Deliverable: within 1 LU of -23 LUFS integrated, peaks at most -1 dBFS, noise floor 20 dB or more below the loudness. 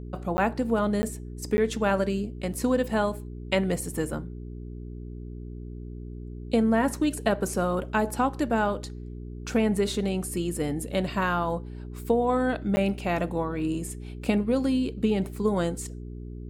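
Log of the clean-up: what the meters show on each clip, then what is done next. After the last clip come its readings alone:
dropouts 4; longest dropout 10 ms; hum 60 Hz; highest harmonic 420 Hz; hum level -36 dBFS; loudness -27.0 LUFS; peak level -10.5 dBFS; loudness target -23.0 LUFS
-> interpolate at 0.37/1.02/1.57/12.76 s, 10 ms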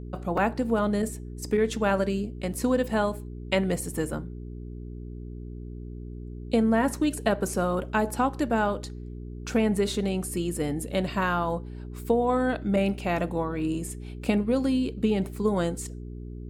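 dropouts 0; hum 60 Hz; highest harmonic 420 Hz; hum level -35 dBFS
-> de-hum 60 Hz, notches 7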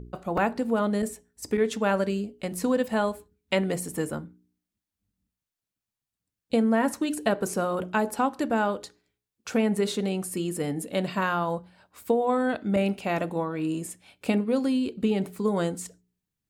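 hum not found; loudness -27.5 LUFS; peak level -11.5 dBFS; loudness target -23.0 LUFS
-> trim +4.5 dB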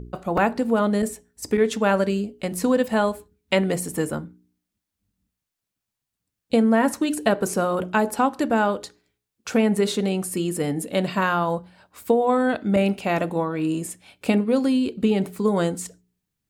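loudness -23.0 LUFS; peak level -7.0 dBFS; noise floor -84 dBFS

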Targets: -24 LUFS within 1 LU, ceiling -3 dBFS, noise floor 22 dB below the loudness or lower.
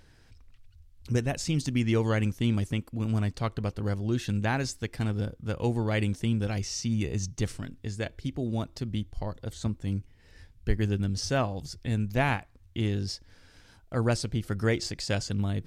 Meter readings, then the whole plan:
loudness -30.5 LUFS; peak level -11.5 dBFS; loudness target -24.0 LUFS
-> trim +6.5 dB

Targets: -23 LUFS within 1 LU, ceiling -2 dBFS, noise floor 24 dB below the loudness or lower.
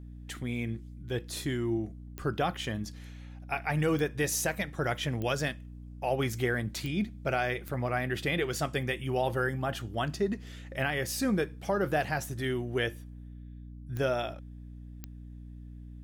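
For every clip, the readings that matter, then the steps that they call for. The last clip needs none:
clicks found 7; hum 60 Hz; highest harmonic 300 Hz; hum level -42 dBFS; loudness -32.0 LUFS; peak level -17.5 dBFS; loudness target -23.0 LUFS
-> de-click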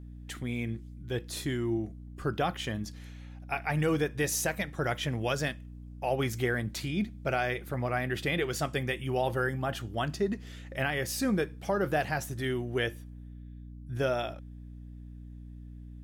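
clicks found 0; hum 60 Hz; highest harmonic 300 Hz; hum level -42 dBFS
-> hum notches 60/120/180/240/300 Hz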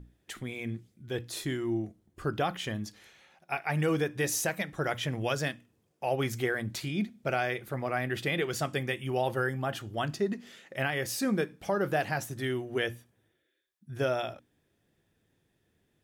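hum not found; loudness -32.0 LUFS; peak level -17.5 dBFS; loudness target -23.0 LUFS
-> trim +9 dB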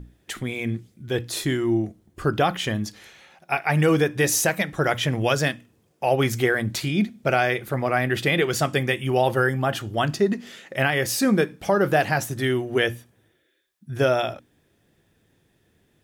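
loudness -23.0 LUFS; peak level -8.5 dBFS; noise floor -66 dBFS

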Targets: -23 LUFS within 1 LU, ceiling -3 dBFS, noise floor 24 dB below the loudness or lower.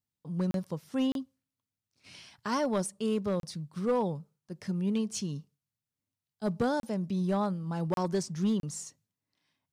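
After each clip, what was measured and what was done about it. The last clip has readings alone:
clipped samples 0.6%; clipping level -22.0 dBFS; dropouts 6; longest dropout 32 ms; loudness -32.5 LUFS; peak level -22.0 dBFS; loudness target -23.0 LUFS
-> clip repair -22 dBFS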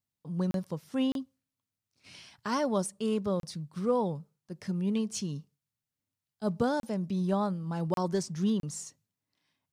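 clipped samples 0.0%; dropouts 6; longest dropout 32 ms
-> interpolate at 0.51/1.12/3.40/6.80/7.94/8.60 s, 32 ms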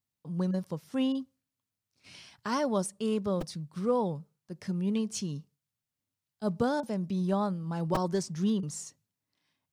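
dropouts 0; loudness -32.0 LUFS; peak level -16.0 dBFS; loudness target -23.0 LUFS
-> trim +9 dB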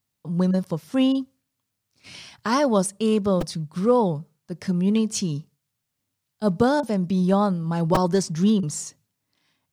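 loudness -23.0 LUFS; peak level -7.0 dBFS; noise floor -80 dBFS

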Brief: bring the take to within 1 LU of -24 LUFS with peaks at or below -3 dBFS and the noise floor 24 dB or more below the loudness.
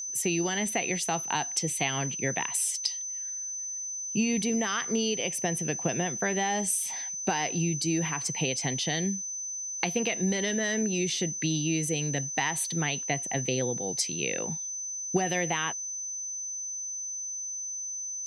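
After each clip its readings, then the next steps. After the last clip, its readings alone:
steady tone 6.1 kHz; tone level -33 dBFS; loudness -29.0 LUFS; peak level -12.0 dBFS; loudness target -24.0 LUFS
-> band-stop 6.1 kHz, Q 30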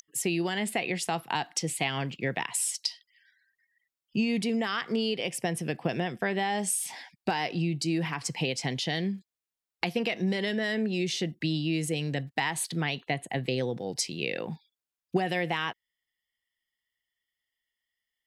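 steady tone not found; loudness -30.0 LUFS; peak level -12.5 dBFS; loudness target -24.0 LUFS
-> trim +6 dB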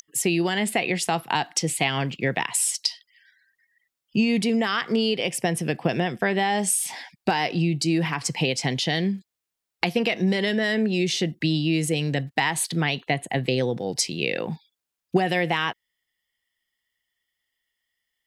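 loudness -24.0 LUFS; peak level -6.5 dBFS; noise floor -85 dBFS

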